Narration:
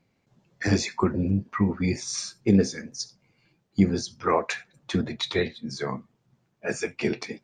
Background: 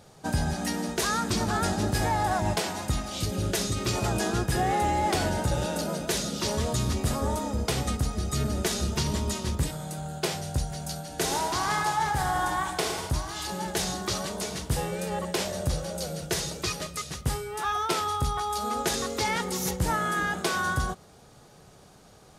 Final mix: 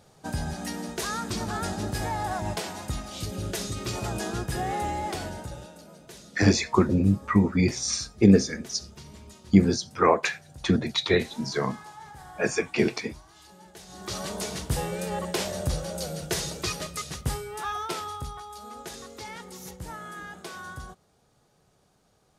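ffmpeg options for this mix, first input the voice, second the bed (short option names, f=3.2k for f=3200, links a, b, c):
-filter_complex "[0:a]adelay=5750,volume=3dB[a];[1:a]volume=14.5dB,afade=t=out:st=4.85:d=0.9:silence=0.188365,afade=t=in:st=13.88:d=0.43:silence=0.11885,afade=t=out:st=17.14:d=1.34:silence=0.237137[b];[a][b]amix=inputs=2:normalize=0"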